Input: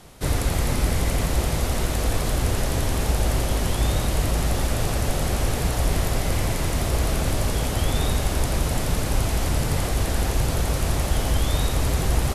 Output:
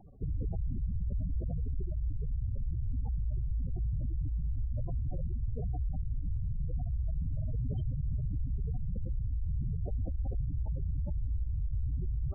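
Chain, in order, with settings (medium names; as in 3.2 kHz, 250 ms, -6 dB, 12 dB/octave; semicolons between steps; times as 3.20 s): spectral gate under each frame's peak -10 dB strong; 7.33–8.38 s: peaking EQ 130 Hz +11.5 dB 0.55 oct; peak limiter -22.5 dBFS, peak gain reduction 11.5 dB; trim -4.5 dB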